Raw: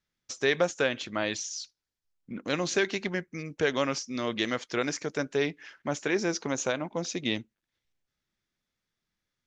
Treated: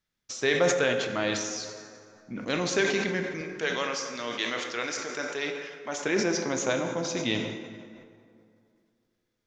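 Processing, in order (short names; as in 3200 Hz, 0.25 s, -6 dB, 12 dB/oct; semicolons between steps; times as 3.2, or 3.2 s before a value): 3.41–6.05 HPF 820 Hz 6 dB/oct; plate-style reverb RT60 2.5 s, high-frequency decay 0.55×, DRR 4.5 dB; sustainer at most 47 dB/s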